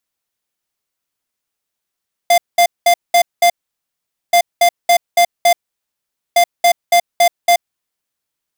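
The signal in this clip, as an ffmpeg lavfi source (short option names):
-f lavfi -i "aevalsrc='0.335*(2*lt(mod(696*t,1),0.5)-1)*clip(min(mod(mod(t,2.03),0.28),0.08-mod(mod(t,2.03),0.28))/0.005,0,1)*lt(mod(t,2.03),1.4)':d=6.09:s=44100"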